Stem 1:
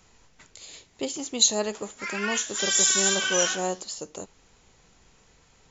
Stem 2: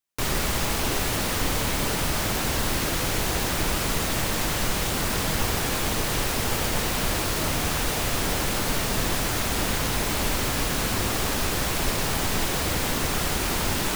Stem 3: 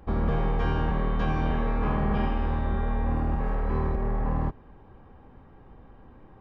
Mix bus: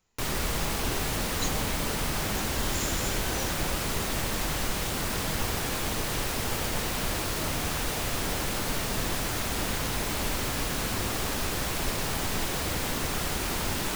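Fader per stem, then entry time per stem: -16.0 dB, -4.5 dB, -13.0 dB; 0.00 s, 0.00 s, 0.20 s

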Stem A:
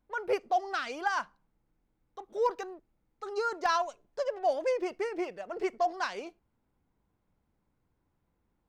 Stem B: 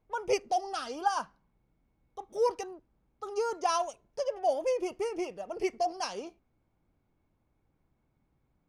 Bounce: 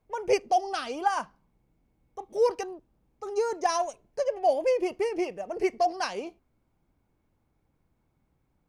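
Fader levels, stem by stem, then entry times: -3.0 dB, +1.0 dB; 0.00 s, 0.00 s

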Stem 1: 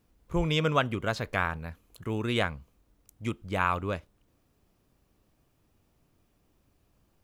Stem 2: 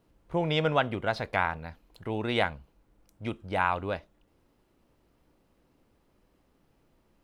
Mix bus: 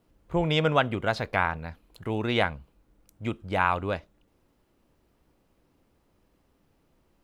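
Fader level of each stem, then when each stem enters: -7.0 dB, -0.5 dB; 0.00 s, 0.00 s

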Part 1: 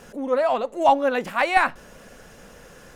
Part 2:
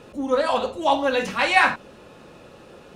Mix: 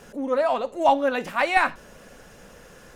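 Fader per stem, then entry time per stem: -1.5 dB, -14.5 dB; 0.00 s, 0.00 s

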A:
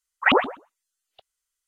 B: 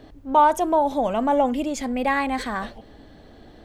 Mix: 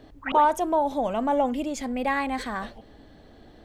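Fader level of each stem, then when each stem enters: -14.5 dB, -3.5 dB; 0.00 s, 0.00 s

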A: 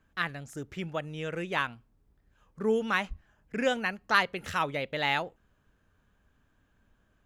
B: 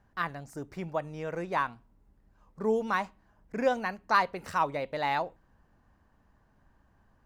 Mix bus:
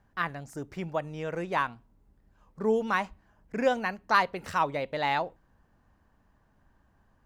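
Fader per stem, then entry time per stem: -11.5 dB, -0.5 dB; 0.00 s, 0.00 s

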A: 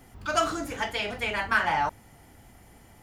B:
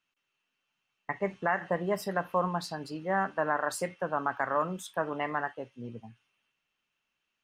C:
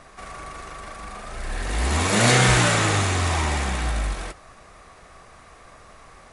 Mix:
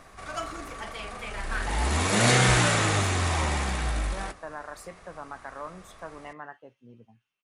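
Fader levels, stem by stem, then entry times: -10.0 dB, -10.0 dB, -3.5 dB; 0.00 s, 1.05 s, 0.00 s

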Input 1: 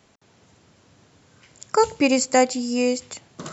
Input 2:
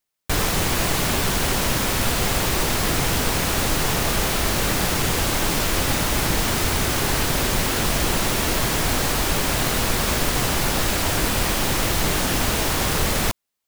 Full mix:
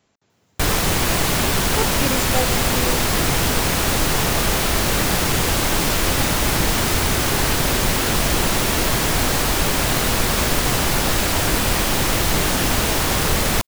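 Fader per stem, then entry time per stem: -7.5 dB, +2.5 dB; 0.00 s, 0.30 s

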